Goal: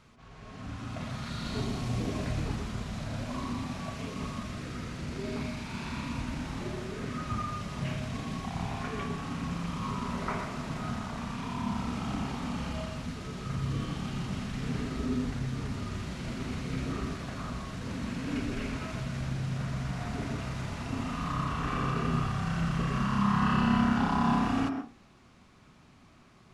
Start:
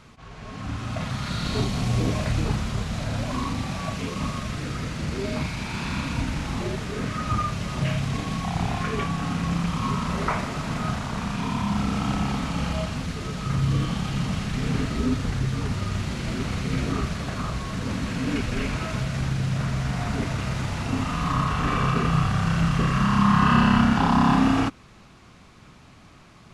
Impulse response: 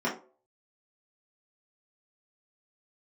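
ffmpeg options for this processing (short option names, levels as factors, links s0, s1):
-filter_complex "[0:a]asplit=2[s0][s1];[1:a]atrim=start_sample=2205,adelay=106[s2];[s1][s2]afir=irnorm=-1:irlink=0,volume=0.15[s3];[s0][s3]amix=inputs=2:normalize=0,volume=0.355"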